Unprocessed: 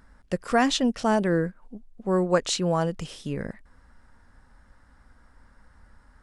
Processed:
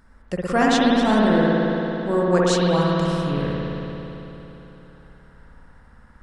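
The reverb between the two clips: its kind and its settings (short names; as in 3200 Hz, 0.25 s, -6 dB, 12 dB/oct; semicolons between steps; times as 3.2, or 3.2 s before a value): spring tank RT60 3.6 s, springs 56 ms, chirp 70 ms, DRR -5 dB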